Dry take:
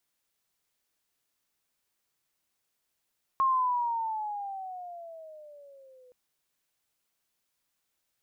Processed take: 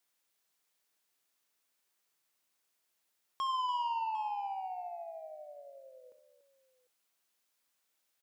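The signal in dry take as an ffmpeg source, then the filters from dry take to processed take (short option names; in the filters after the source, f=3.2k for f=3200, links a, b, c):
-f lavfi -i "aevalsrc='pow(10,(-21-32.5*t/2.72)/20)*sin(2*PI*1080*2.72/(-13.5*log(2)/12)*(exp(-13.5*log(2)/12*t/2.72)-1))':d=2.72:s=44100"
-filter_complex "[0:a]highpass=f=310:p=1,asoftclip=type=tanh:threshold=-32dB,asplit=2[a][b];[b]aecho=0:1:67|288|750:0.237|0.211|0.126[c];[a][c]amix=inputs=2:normalize=0"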